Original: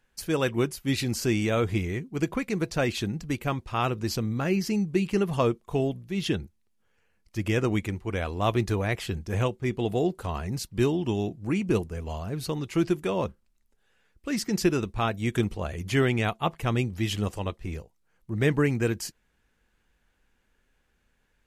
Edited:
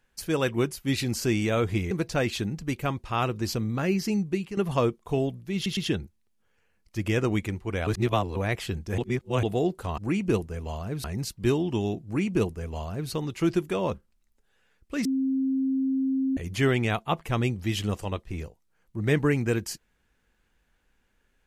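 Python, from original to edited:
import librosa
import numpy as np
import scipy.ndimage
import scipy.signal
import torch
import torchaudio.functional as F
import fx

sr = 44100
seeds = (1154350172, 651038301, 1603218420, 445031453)

y = fx.edit(x, sr, fx.cut(start_s=1.91, length_s=0.62),
    fx.fade_out_to(start_s=4.84, length_s=0.35, floor_db=-13.5),
    fx.stutter(start_s=6.17, slice_s=0.11, count=3),
    fx.reverse_span(start_s=8.27, length_s=0.49),
    fx.reverse_span(start_s=9.38, length_s=0.45),
    fx.duplicate(start_s=11.39, length_s=1.06, to_s=10.38),
    fx.bleep(start_s=14.39, length_s=1.32, hz=266.0, db=-22.5), tone=tone)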